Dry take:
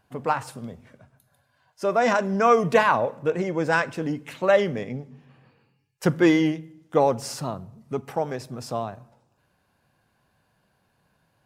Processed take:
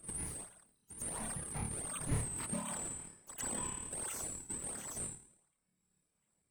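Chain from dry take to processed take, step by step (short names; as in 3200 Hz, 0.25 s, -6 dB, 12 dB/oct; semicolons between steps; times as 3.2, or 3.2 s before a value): four-band scrambler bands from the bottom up 2341; Doppler pass-by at 4.12, 10 m/s, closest 5.6 m; bell 97 Hz +12 dB 0.86 oct; dispersion lows, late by 58 ms, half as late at 2100 Hz; on a send: flutter echo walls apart 8.3 m, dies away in 1.4 s; on the sum: compressor 2.5:1, threshold -42 dBFS, peak gain reduction 20.5 dB; wide varispeed 1.76×; bell 330 Hz -8.5 dB 1.1 oct; pre-echo 0.114 s -16 dB; de-esser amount 90%; reverb removal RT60 1 s; in parallel at -6 dB: decimation with a swept rate 42×, swing 160% 1.4 Hz; on the sum: gain +5.5 dB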